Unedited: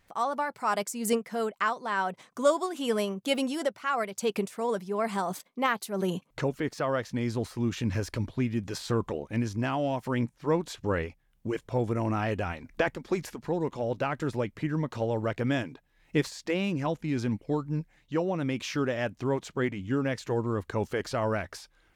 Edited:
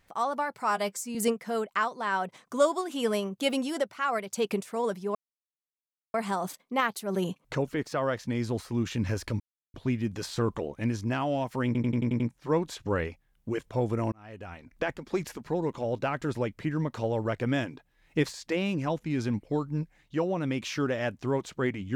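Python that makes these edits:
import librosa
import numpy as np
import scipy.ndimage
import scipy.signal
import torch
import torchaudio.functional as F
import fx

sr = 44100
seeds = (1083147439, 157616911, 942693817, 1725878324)

y = fx.edit(x, sr, fx.stretch_span(start_s=0.7, length_s=0.3, factor=1.5),
    fx.insert_silence(at_s=5.0, length_s=0.99),
    fx.insert_silence(at_s=8.26, length_s=0.34),
    fx.stutter(start_s=10.18, slice_s=0.09, count=7),
    fx.fade_in_span(start_s=12.1, length_s=1.11), tone=tone)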